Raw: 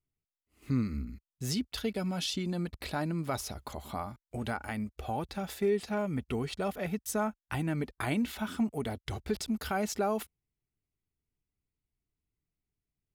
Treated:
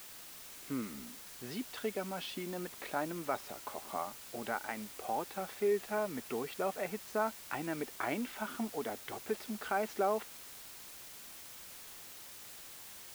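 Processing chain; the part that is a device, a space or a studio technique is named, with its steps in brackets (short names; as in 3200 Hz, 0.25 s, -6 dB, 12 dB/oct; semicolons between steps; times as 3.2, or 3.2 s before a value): wax cylinder (BPF 360–2200 Hz; wow and flutter; white noise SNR 11 dB)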